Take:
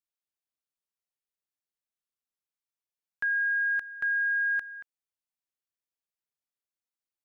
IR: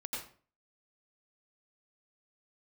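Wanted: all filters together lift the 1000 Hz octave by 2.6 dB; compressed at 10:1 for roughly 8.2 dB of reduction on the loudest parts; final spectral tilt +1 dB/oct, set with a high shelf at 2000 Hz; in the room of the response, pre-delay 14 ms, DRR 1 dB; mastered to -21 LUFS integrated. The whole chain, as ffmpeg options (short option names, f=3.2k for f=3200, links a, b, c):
-filter_complex "[0:a]equalizer=f=1k:t=o:g=5.5,highshelf=f=2k:g=-5.5,acompressor=threshold=-34dB:ratio=10,asplit=2[a][b];[1:a]atrim=start_sample=2205,adelay=14[c];[b][c]afir=irnorm=-1:irlink=0,volume=-2dB[d];[a][d]amix=inputs=2:normalize=0,volume=11.5dB"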